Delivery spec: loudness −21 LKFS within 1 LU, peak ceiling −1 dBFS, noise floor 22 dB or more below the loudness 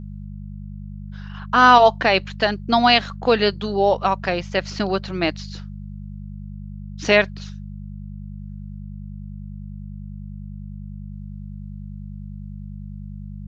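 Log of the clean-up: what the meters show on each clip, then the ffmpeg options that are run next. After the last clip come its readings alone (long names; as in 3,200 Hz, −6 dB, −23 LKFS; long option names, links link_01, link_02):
mains hum 50 Hz; hum harmonics up to 200 Hz; level of the hum −31 dBFS; integrated loudness −18.0 LKFS; sample peak −1.5 dBFS; target loudness −21.0 LKFS
→ -af "bandreject=frequency=50:width_type=h:width=4,bandreject=frequency=100:width_type=h:width=4,bandreject=frequency=150:width_type=h:width=4,bandreject=frequency=200:width_type=h:width=4"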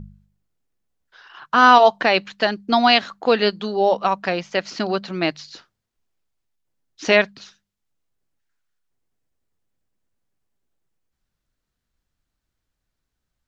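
mains hum none found; integrated loudness −18.0 LKFS; sample peak −1.5 dBFS; target loudness −21.0 LKFS
→ -af "volume=-3dB"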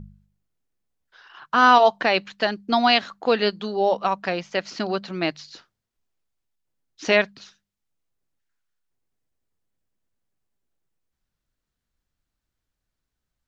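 integrated loudness −21.0 LKFS; sample peak −4.5 dBFS; background noise floor −83 dBFS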